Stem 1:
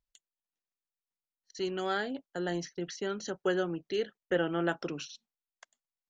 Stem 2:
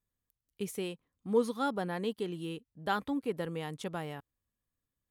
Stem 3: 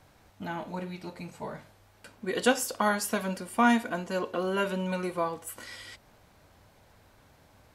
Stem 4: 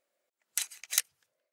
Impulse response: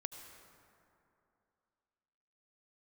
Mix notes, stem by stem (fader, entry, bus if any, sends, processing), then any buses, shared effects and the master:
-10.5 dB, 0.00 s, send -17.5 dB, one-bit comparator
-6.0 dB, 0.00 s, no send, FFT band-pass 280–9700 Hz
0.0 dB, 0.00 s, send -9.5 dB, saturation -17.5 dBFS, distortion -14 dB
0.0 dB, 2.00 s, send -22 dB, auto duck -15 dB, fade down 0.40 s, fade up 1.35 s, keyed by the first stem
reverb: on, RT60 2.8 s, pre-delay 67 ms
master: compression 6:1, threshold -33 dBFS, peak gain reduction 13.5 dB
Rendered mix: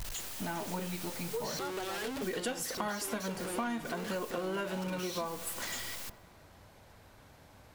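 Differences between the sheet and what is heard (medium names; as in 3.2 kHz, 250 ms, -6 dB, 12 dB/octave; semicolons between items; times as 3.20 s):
stem 1 -10.5 dB -> -2.5 dB; stem 4: muted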